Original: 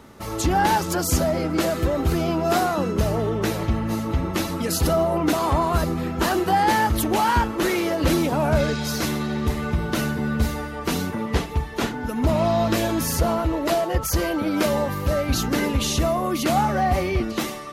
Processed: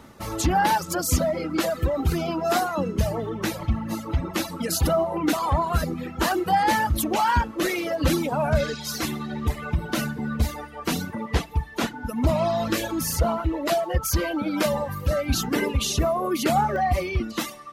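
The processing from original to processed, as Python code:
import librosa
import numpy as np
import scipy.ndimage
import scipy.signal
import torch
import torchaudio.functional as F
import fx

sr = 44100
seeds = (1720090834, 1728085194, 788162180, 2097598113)

y = fx.dereverb_blind(x, sr, rt60_s=1.9)
y = fx.peak_eq(y, sr, hz=410.0, db=fx.steps((0.0, -6.5), (15.54, 8.0), (16.76, -10.0)), octaves=0.2)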